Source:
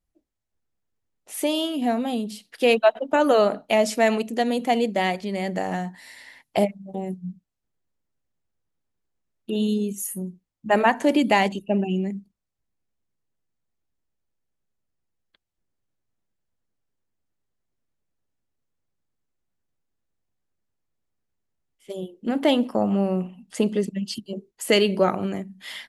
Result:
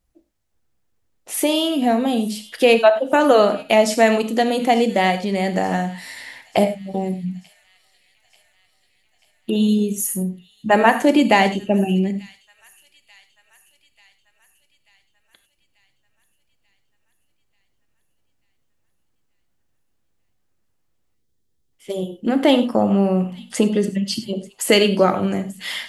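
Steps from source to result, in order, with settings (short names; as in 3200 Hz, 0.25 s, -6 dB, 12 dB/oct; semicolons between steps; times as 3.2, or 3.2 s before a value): non-linear reverb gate 0.12 s flat, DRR 9 dB; in parallel at -0.5 dB: compressor, threshold -31 dBFS, peak gain reduction 17.5 dB; 9.52–10.22 on the sum: crackle 170/s -> 63/s -48 dBFS; 21.15–21.73 spectral gain 530–3100 Hz -9 dB; thin delay 0.888 s, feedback 59%, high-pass 2800 Hz, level -20 dB; gain +3 dB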